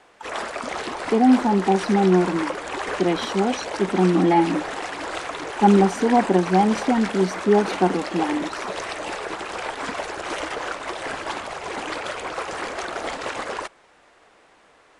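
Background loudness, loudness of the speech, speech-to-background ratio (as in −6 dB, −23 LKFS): −29.5 LKFS, −20.5 LKFS, 9.0 dB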